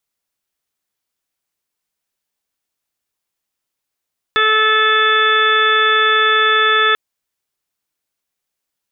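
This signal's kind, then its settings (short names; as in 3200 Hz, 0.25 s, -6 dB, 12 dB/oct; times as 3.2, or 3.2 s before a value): steady additive tone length 2.59 s, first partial 435 Hz, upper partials -13.5/5.5/5/-6.5/-4/-17.5/2 dB, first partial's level -20 dB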